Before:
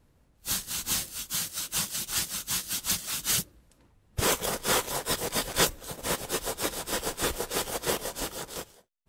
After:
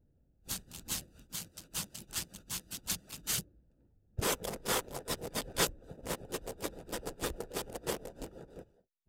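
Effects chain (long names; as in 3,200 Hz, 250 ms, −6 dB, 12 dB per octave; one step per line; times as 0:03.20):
adaptive Wiener filter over 41 samples
pitch vibrato 12 Hz 31 cents
0:04.31–0:05.97: one half of a high-frequency compander encoder only
level −5.5 dB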